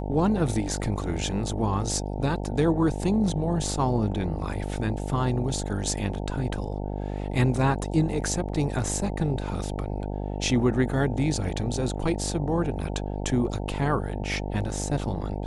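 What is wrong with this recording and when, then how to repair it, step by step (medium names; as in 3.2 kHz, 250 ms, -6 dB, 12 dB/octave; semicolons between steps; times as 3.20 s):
buzz 50 Hz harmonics 18 -31 dBFS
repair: de-hum 50 Hz, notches 18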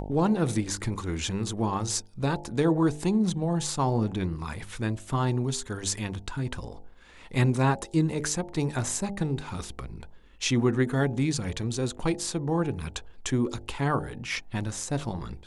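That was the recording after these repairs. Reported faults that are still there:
nothing left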